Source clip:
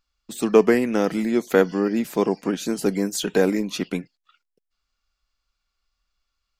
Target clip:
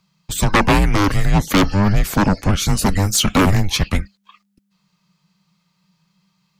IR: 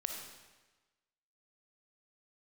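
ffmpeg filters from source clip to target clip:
-af "aeval=exprs='0.841*sin(PI/2*5.62*val(0)/0.841)':c=same,afreqshift=-200,volume=0.447"

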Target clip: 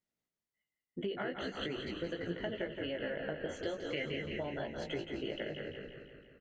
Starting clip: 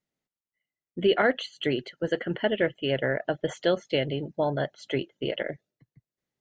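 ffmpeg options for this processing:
-filter_complex "[0:a]flanger=delay=17:depth=3.1:speed=0.42,asplit=2[s0][s1];[s1]asplit=5[s2][s3][s4][s5][s6];[s2]adelay=186,afreqshift=-63,volume=0.355[s7];[s3]adelay=372,afreqshift=-126,volume=0.17[s8];[s4]adelay=558,afreqshift=-189,volume=0.0813[s9];[s5]adelay=744,afreqshift=-252,volume=0.0394[s10];[s6]adelay=930,afreqshift=-315,volume=0.0188[s11];[s7][s8][s9][s10][s11]amix=inputs=5:normalize=0[s12];[s0][s12]amix=inputs=2:normalize=0,acompressor=threshold=0.02:ratio=6,asettb=1/sr,asplit=3[s13][s14][s15];[s13]atrim=end=3.884[s16];[s14]atrim=start=3.88:end=4.59,asetpts=PTS-STARTPTS,afade=t=in:d=0.004:c=qsin,afade=t=out:st=0.706:d=0.004:c=qsin,equalizer=f=1000:t=o:w=1:g=-5,equalizer=f=2000:t=o:w=1:g=12,equalizer=f=4000:t=o:w=1:g=-5[s17];[s15]atrim=start=4.586[s18];[s16][s17]acrossfade=d=0.004:c1=hsin:c2=qsin[s19];[s19][s18]acrossfade=d=0.004:c1=qsin:c2=hsin,asplit=2[s20][s21];[s21]aecho=0:1:170|340|510|680|850|1020|1190:0.398|0.235|0.139|0.0818|0.0482|0.0285|0.0168[s22];[s20][s22]amix=inputs=2:normalize=0,volume=0.794"

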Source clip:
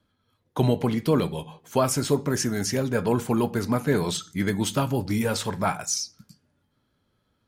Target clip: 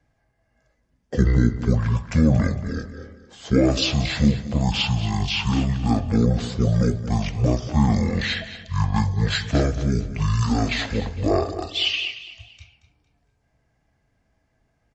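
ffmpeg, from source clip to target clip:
-af "aecho=1:1:114|228|342:0.211|0.0676|0.0216,asetrate=22050,aresample=44100,volume=1.5"

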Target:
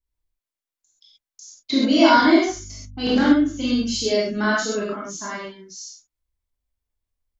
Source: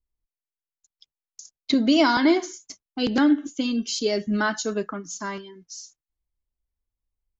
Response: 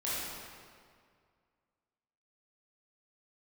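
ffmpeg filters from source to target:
-filter_complex "[0:a]asettb=1/sr,asplit=3[s0][s1][s2];[s0]atrim=end=2.484[s3];[s1]atrim=start=2.48:end=4.02,asetpts=PTS-STARTPTS,afade=t=in:d=0.004:c=qsin,afade=t=out:st=1.536:d=0.004:c=qsin,aeval=exprs='val(0)+0.00631*(sin(2*PI*50*n/s)+sin(2*PI*2*50*n/s)/2+sin(2*PI*3*50*n/s)/3+sin(2*PI*4*50*n/s)/4+sin(2*PI*5*50*n/s)/5)':c=same[s4];[s2]atrim=start=4.016[s5];[s3][s4]acrossfade=d=0.004:c1=hsin:c2=qsin[s6];[s6][s5]acrossfade=d=0.004:c1=qsin:c2=hsin[s7];[1:a]atrim=start_sample=2205,atrim=end_sample=6174[s8];[s7][s8]afir=irnorm=-1:irlink=0"

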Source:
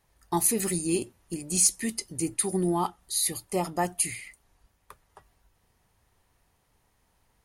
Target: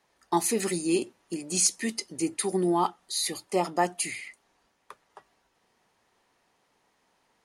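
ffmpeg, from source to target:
-filter_complex "[0:a]acrossover=split=190 7900:gain=0.0708 1 0.178[s0][s1][s2];[s0][s1][s2]amix=inputs=3:normalize=0,volume=1.41"

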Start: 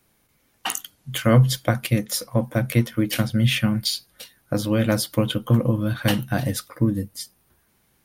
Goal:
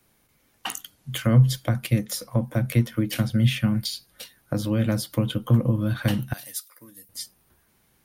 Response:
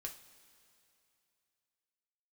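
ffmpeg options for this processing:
-filter_complex "[0:a]asettb=1/sr,asplit=3[s0][s1][s2];[s0]atrim=end=6.334[s3];[s1]atrim=start=6.33:end=7.09,asetpts=PTS-STARTPTS,afade=t=in:d=0.004:c=qsin,afade=t=out:st=0.756:d=0.004:c=qsin,aderivative[s4];[s2]atrim=start=7.086[s5];[s3][s4]acrossfade=d=0.004:c1=hsin:c2=qsin[s6];[s6][s5]acrossfade=d=0.004:c1=qsin:c2=hsin,acrossover=split=240[s7][s8];[s8]acompressor=threshold=0.0355:ratio=3[s9];[s7][s9]amix=inputs=2:normalize=0"

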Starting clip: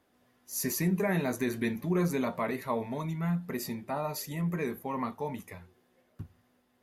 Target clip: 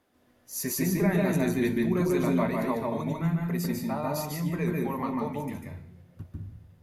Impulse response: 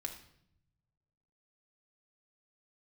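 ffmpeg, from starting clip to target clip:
-filter_complex "[0:a]asplit=2[s0][s1];[1:a]atrim=start_sample=2205,lowshelf=f=360:g=9.5,adelay=146[s2];[s1][s2]afir=irnorm=-1:irlink=0,volume=0.891[s3];[s0][s3]amix=inputs=2:normalize=0"

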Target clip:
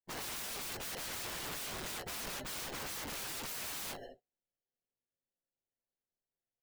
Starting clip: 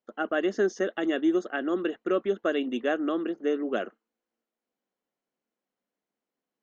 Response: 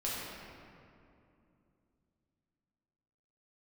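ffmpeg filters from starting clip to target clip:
-filter_complex "[0:a]asplit=2[s0][s1];[s1]highpass=f=720:p=1,volume=7.08,asoftclip=type=tanh:threshold=0.211[s2];[s0][s2]amix=inputs=2:normalize=0,lowpass=f=4800:p=1,volume=0.501,asplit=3[s3][s4][s5];[s3]afade=t=out:st=0.86:d=0.02[s6];[s4]highpass=790,afade=t=in:st=0.86:d=0.02,afade=t=out:st=3.1:d=0.02[s7];[s5]afade=t=in:st=3.1:d=0.02[s8];[s6][s7][s8]amix=inputs=3:normalize=0,asplit=2[s9][s10];[s10]adelay=230,highpass=300,lowpass=3400,asoftclip=type=hard:threshold=0.0708,volume=0.0708[s11];[s9][s11]amix=inputs=2:normalize=0,acrusher=samples=37:mix=1:aa=0.000001[s12];[1:a]atrim=start_sample=2205,atrim=end_sample=3969[s13];[s12][s13]afir=irnorm=-1:irlink=0,acompressor=threshold=0.0501:ratio=12,highshelf=f=2400:g=3,aeval=exprs='(mod(53.1*val(0)+1,2)-1)/53.1':c=same,afftdn=nr=22:nf=-51,volume=0.841"

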